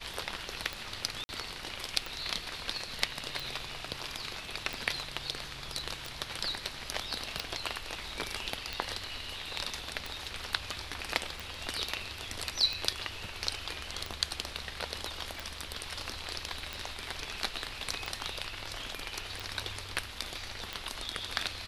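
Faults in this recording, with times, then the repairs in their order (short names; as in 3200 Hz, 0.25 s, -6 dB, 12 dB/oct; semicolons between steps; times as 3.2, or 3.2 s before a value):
tick 45 rpm -20 dBFS
1.24–1.29 gap 50 ms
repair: de-click; interpolate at 1.24, 50 ms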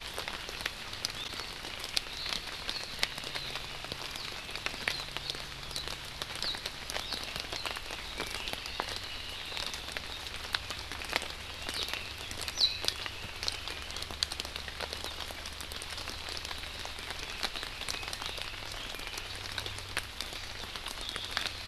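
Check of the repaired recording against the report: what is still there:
none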